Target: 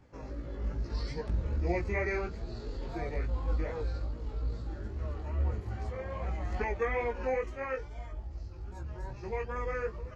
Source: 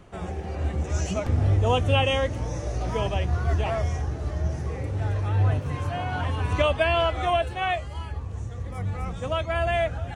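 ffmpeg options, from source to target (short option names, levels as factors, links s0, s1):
-af "asetrate=32097,aresample=44100,atempo=1.37395,flanger=delay=17:depth=2.4:speed=2.4,volume=0.501"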